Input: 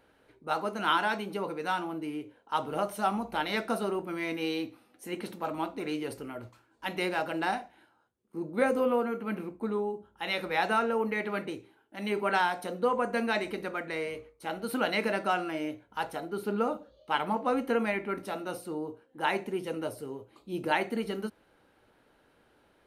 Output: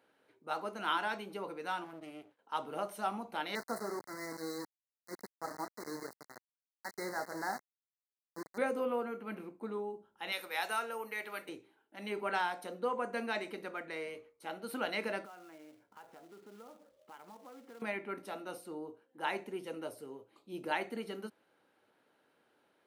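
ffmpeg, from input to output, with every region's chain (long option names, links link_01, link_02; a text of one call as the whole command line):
ffmpeg -i in.wav -filter_complex "[0:a]asettb=1/sr,asplit=3[link_01][link_02][link_03];[link_01]atrim=end=1.844[link_04];[link_02]atrim=start=1.84:end=2.39,asetpts=PTS-STARTPTS,afade=type=in:duration=0.004:curve=qsin,afade=type=out:start_time=0.546:duration=0.004:curve=qsin,agate=range=-33dB:threshold=-54dB:ratio=3:release=100:detection=peak,aeval=exprs='max(val(0),0)':channel_layout=same[link_05];[link_03]atrim=start=2.386[link_06];[link_04][link_05]acrossfade=duration=0.004:curve1=hsin:curve2=qsin[link_07];[link_07][link_06]acrossfade=duration=0.004:curve1=qsin:curve2=hsin,asettb=1/sr,asplit=3[link_08][link_09][link_10];[link_08]atrim=end=3.554[link_11];[link_09]atrim=start=3.55:end=8.58,asetpts=PTS-STARTPTS,afade=type=in:duration=0.004:curve=qsin,afade=type=out:start_time=5.026:duration=0.004:curve=qsin,aeval=exprs='val(0)*gte(abs(val(0)),0.0237)':channel_layout=same,asuperstop=centerf=2900:order=20:qfactor=1.5[link_12];[link_10]atrim=start=8.576[link_13];[link_11][link_12]acrossfade=duration=0.004:curve1=hsin:curve2=qsin[link_14];[link_14][link_13]acrossfade=duration=0.004:curve1=qsin:curve2=hsin,asettb=1/sr,asplit=3[link_15][link_16][link_17];[link_15]atrim=end=10.324[link_18];[link_16]atrim=start=10.32:end=11.49,asetpts=PTS-STARTPTS,afade=type=in:duration=0.004:curve=qsin,afade=type=out:start_time=1.166:duration=0.004:curve=qsin,highpass=frequency=720:poles=1,aemphasis=mode=production:type=50fm,aeval=exprs='val(0)+0.000631*(sin(2*PI*50*n/s)+sin(2*PI*2*50*n/s)/2+sin(2*PI*3*50*n/s)/3+sin(2*PI*4*50*n/s)/4+sin(2*PI*5*50*n/s)/5)':channel_layout=same[link_19];[link_17]atrim=start=11.486[link_20];[link_18][link_19]acrossfade=duration=0.004:curve1=hsin:curve2=qsin[link_21];[link_21][link_20]acrossfade=duration=0.004:curve1=qsin:curve2=hsin,asettb=1/sr,asplit=3[link_22][link_23][link_24];[link_22]atrim=end=15.254[link_25];[link_23]atrim=start=15.25:end=17.82,asetpts=PTS-STARTPTS,afade=type=in:duration=0.004:curve=qsin,afade=type=out:start_time=2.566:duration=0.004:curve=qsin,lowpass=2100,acompressor=threshold=-48dB:ratio=3:attack=3.2:release=140:knee=1:detection=peak,acrusher=bits=3:mode=log:mix=0:aa=0.000001[link_26];[link_24]atrim=start=17.816[link_27];[link_25][link_26]acrossfade=duration=0.004:curve1=hsin:curve2=qsin[link_28];[link_28][link_27]acrossfade=duration=0.004:curve1=qsin:curve2=hsin,highpass=150,lowshelf=frequency=210:gain=-5,volume=-6.5dB" out.wav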